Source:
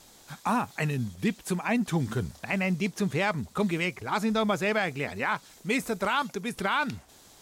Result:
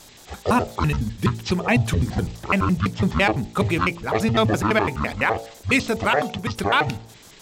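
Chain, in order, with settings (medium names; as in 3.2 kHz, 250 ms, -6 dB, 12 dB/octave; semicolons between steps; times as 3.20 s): pitch shift switched off and on -11.5 st, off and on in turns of 84 ms; de-hum 56.6 Hz, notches 16; dynamic bell 2.7 kHz, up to +4 dB, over -44 dBFS, Q 2.4; trim +8 dB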